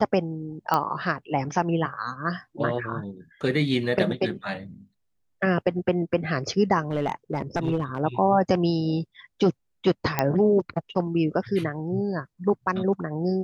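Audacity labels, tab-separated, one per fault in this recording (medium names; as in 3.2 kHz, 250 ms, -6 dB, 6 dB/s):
0.740000	0.740000	pop -9 dBFS
6.900000	8.010000	clipped -19 dBFS
10.190000	10.190000	pop -7 dBFS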